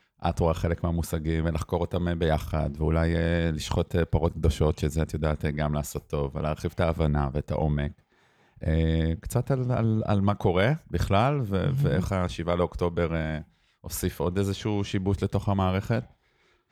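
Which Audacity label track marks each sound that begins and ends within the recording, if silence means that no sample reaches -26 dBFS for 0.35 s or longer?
8.630000	13.370000	sound
13.860000	15.990000	sound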